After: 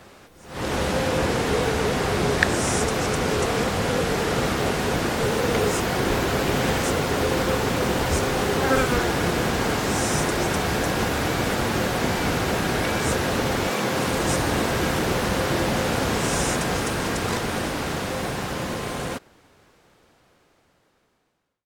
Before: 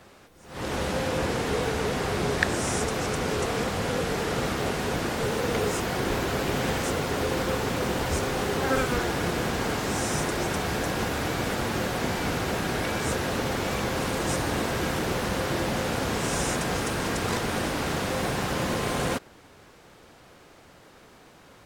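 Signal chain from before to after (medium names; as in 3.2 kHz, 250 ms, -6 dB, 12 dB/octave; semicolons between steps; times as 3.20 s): fade out at the end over 5.64 s; 13.69–14.10 s: high-pass 200 Hz -> 67 Hz 24 dB/octave; trim +4.5 dB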